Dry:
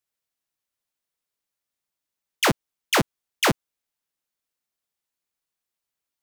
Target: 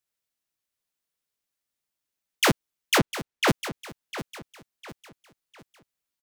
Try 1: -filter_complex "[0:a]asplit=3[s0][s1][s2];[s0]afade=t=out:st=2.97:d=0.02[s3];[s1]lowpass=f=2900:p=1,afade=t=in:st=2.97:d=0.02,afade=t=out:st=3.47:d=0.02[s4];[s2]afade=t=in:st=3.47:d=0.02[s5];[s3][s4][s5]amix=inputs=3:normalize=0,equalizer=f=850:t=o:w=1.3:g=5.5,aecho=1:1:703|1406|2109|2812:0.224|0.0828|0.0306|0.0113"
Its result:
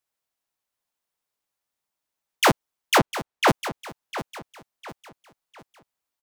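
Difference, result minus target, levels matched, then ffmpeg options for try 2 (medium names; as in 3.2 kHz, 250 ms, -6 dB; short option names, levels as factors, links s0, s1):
1 kHz band +4.0 dB
-filter_complex "[0:a]asplit=3[s0][s1][s2];[s0]afade=t=out:st=2.97:d=0.02[s3];[s1]lowpass=f=2900:p=1,afade=t=in:st=2.97:d=0.02,afade=t=out:st=3.47:d=0.02[s4];[s2]afade=t=in:st=3.47:d=0.02[s5];[s3][s4][s5]amix=inputs=3:normalize=0,equalizer=f=850:t=o:w=1.3:g=-2.5,aecho=1:1:703|1406|2109|2812:0.224|0.0828|0.0306|0.0113"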